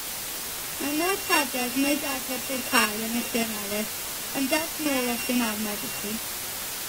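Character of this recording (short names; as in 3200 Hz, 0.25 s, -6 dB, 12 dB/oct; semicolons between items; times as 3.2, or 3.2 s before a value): a buzz of ramps at a fixed pitch in blocks of 16 samples; random-step tremolo, depth 75%; a quantiser's noise floor 6-bit, dither triangular; AAC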